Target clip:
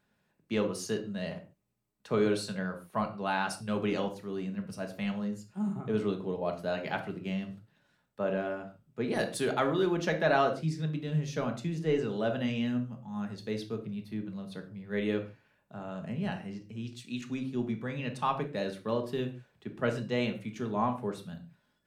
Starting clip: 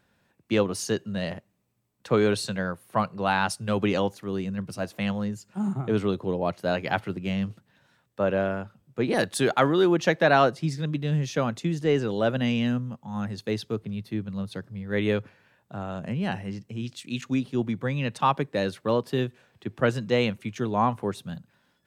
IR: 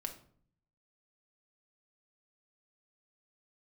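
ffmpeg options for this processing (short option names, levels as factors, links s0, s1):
-filter_complex "[1:a]atrim=start_sample=2205,atrim=end_sample=6615[s0];[0:a][s0]afir=irnorm=-1:irlink=0,volume=0.531"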